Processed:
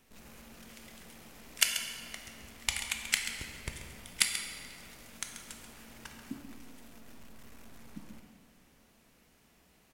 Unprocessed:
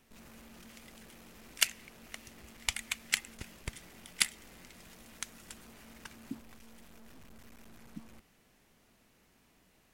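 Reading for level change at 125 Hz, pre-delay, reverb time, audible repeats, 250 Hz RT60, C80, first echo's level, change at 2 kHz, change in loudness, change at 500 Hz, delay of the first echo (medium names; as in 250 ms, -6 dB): +2.0 dB, 14 ms, 2.2 s, 1, 2.4 s, 5.0 dB, -11.0 dB, +2.0 dB, +1.5 dB, +1.5 dB, 135 ms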